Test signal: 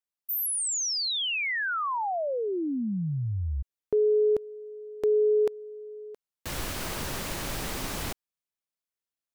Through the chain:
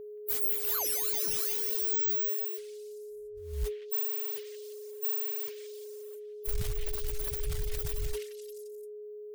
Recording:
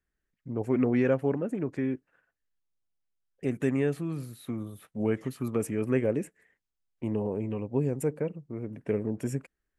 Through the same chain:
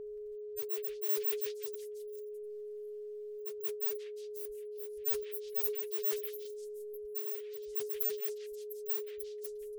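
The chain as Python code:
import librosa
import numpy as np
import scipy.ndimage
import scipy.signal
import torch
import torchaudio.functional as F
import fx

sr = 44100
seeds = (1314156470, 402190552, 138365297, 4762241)

p1 = fx.bit_reversed(x, sr, seeds[0], block=16)
p2 = fx.spec_gate(p1, sr, threshold_db=-15, keep='strong')
p3 = fx.dynamic_eq(p2, sr, hz=150.0, q=3.5, threshold_db=-48.0, ratio=4.0, max_db=3)
p4 = scipy.signal.sosfilt(scipy.signal.cheby2(6, 70, [110.0, 6300.0], 'bandstop', fs=sr, output='sos'), p3)
p5 = fx.mod_noise(p4, sr, seeds[1], snr_db=18)
p6 = fx.fold_sine(p5, sr, drive_db=16, ceiling_db=-23.0)
p7 = p5 + F.gain(torch.from_numpy(p6), -4.0).numpy()
p8 = fx.dereverb_blind(p7, sr, rt60_s=1.6)
p9 = p8 + 10.0 ** (-41.0 / 20.0) * np.sin(2.0 * np.pi * 420.0 * np.arange(len(p8)) / sr)
p10 = p9 + fx.echo_stepped(p9, sr, ms=175, hz=2500.0, octaves=0.7, feedback_pct=70, wet_db=-1.5, dry=0)
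y = fx.sustainer(p10, sr, db_per_s=100.0)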